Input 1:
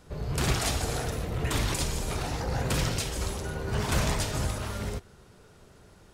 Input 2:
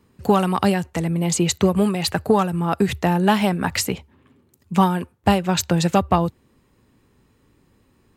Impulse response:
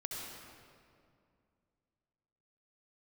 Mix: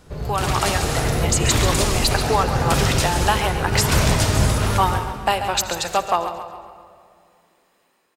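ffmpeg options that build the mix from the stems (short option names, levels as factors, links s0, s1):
-filter_complex "[0:a]dynaudnorm=f=120:g=13:m=1.88,volume=1.41,asplit=2[s0][s1];[s1]volume=0.422[s2];[1:a]highpass=640,dynaudnorm=f=130:g=5:m=1.88,volume=0.398,asplit=4[s3][s4][s5][s6];[s4]volume=0.376[s7];[s5]volume=0.398[s8];[s6]apad=whole_len=270769[s9];[s0][s9]sidechaincompress=threshold=0.0224:ratio=3:attack=16:release=1370[s10];[2:a]atrim=start_sample=2205[s11];[s2][s7]amix=inputs=2:normalize=0[s12];[s12][s11]afir=irnorm=-1:irlink=0[s13];[s8]aecho=0:1:137|274|411|548|685|822:1|0.44|0.194|0.0852|0.0375|0.0165[s14];[s10][s3][s13][s14]amix=inputs=4:normalize=0,dynaudnorm=f=160:g=5:m=1.58"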